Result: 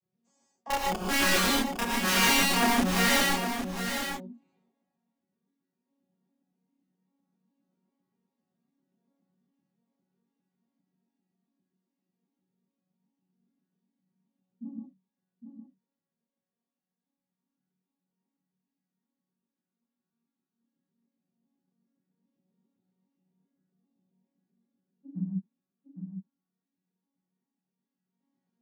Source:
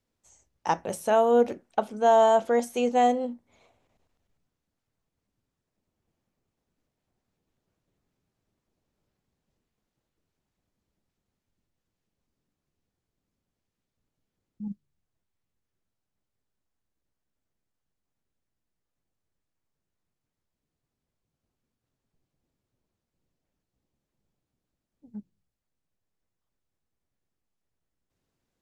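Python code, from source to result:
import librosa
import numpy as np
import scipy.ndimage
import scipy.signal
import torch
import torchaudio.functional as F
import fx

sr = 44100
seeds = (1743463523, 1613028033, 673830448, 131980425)

p1 = fx.vocoder_arp(x, sr, chord='major triad', root=54, every_ms=133)
p2 = fx.low_shelf(p1, sr, hz=150.0, db=10.0)
p3 = (np.mod(10.0 ** (19.5 / 20.0) * p2 + 1.0, 2.0) - 1.0) / 10.0 ** (19.5 / 20.0)
p4 = fx.chorus_voices(p3, sr, voices=2, hz=0.11, base_ms=30, depth_ms=2.2, mix_pct=55)
p5 = p4 + fx.echo_single(p4, sr, ms=808, db=-7.5, dry=0)
y = fx.rev_gated(p5, sr, seeds[0], gate_ms=170, shape='rising', drr_db=-1.5)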